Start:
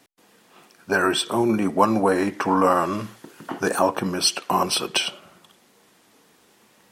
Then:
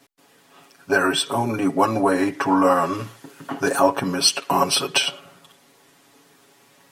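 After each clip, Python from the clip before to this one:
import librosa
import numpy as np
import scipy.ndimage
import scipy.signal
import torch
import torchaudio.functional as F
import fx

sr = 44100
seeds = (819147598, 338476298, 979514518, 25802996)

y = fx.rider(x, sr, range_db=10, speed_s=2.0)
y = y + 0.92 * np.pad(y, (int(7.2 * sr / 1000.0), 0))[:len(y)]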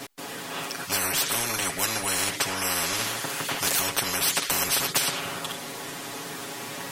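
y = fx.spectral_comp(x, sr, ratio=10.0)
y = F.gain(torch.from_numpy(y), -6.5).numpy()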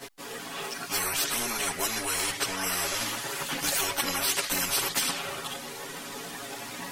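y = fx.chorus_voices(x, sr, voices=6, hz=0.51, base_ms=15, depth_ms=2.6, mix_pct=65)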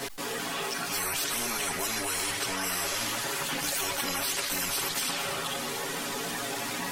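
y = x + 10.0 ** (-13.5 / 20.0) * np.pad(x, (int(231 * sr / 1000.0), 0))[:len(x)]
y = fx.env_flatten(y, sr, amount_pct=70)
y = F.gain(torch.from_numpy(y), -5.0).numpy()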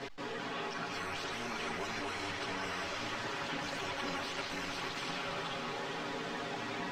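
y = fx.air_absorb(x, sr, metres=180.0)
y = fx.echo_alternate(y, sr, ms=201, hz=1700.0, feedback_pct=77, wet_db=-5.5)
y = F.gain(torch.from_numpy(y), -5.0).numpy()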